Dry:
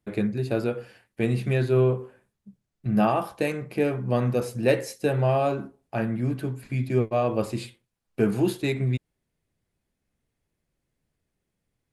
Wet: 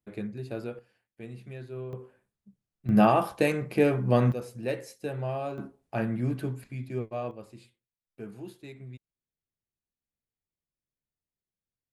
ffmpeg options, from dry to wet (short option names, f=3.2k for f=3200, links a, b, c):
-af "asetnsamples=n=441:p=0,asendcmd='0.79 volume volume -18dB;1.93 volume volume -8dB;2.89 volume volume 1.5dB;4.32 volume volume -10dB;5.58 volume volume -2.5dB;6.64 volume volume -10dB;7.31 volume volume -19dB',volume=-10dB"